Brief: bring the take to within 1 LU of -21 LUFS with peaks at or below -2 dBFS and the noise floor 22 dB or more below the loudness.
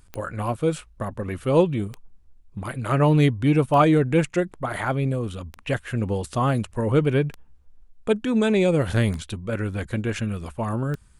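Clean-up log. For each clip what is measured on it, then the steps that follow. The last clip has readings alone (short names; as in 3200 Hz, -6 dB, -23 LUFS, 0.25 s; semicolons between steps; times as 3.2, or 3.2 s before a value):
clicks 7; loudness -23.5 LUFS; peak -5.5 dBFS; loudness target -21.0 LUFS
-> de-click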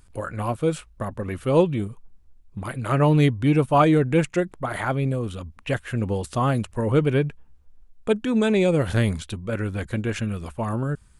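clicks 0; loudness -23.5 LUFS; peak -5.5 dBFS; loudness target -21.0 LUFS
-> gain +2.5 dB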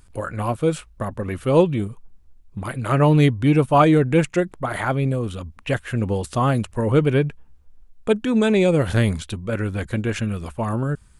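loudness -21.0 LUFS; peak -3.0 dBFS; noise floor -50 dBFS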